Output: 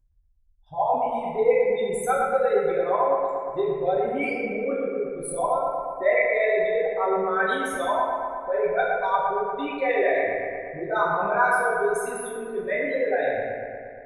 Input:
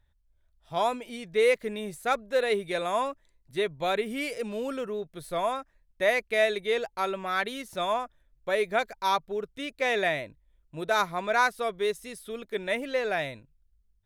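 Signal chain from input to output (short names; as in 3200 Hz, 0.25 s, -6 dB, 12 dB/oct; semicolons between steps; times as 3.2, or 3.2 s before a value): formant sharpening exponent 3; resonant high shelf 5200 Hz +7 dB, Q 1.5; on a send: analogue delay 0.117 s, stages 2048, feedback 71%, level -4 dB; on the sum: two-slope reverb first 0.7 s, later 2.2 s, from -27 dB, DRR -5.5 dB; gain -3 dB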